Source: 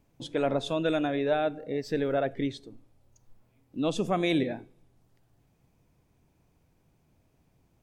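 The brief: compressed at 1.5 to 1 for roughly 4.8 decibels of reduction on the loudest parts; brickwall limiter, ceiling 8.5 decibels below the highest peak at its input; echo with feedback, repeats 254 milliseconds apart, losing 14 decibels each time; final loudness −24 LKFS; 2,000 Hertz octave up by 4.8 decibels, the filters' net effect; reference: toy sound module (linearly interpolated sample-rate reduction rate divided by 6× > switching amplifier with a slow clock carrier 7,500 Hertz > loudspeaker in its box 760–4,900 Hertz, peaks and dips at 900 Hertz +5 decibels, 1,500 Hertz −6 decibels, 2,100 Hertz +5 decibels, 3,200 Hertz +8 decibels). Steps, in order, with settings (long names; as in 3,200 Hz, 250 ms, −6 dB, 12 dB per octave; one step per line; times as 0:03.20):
parametric band 2,000 Hz +4 dB
downward compressor 1.5 to 1, threshold −35 dBFS
brickwall limiter −26.5 dBFS
repeating echo 254 ms, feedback 20%, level −14 dB
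linearly interpolated sample-rate reduction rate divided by 6×
switching amplifier with a slow clock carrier 7,500 Hz
loudspeaker in its box 760–4,900 Hz, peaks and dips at 900 Hz +5 dB, 1,500 Hz −6 dB, 2,100 Hz +5 dB, 3,200 Hz +8 dB
level +19.5 dB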